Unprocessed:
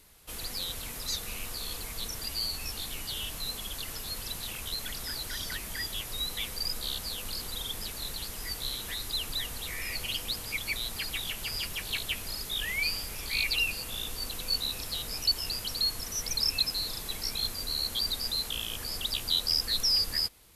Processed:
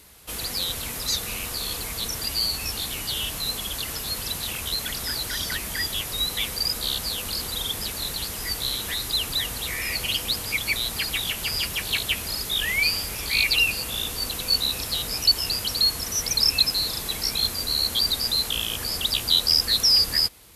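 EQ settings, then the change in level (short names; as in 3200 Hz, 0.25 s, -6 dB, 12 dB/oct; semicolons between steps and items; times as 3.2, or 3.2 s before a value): HPF 43 Hz; +8.0 dB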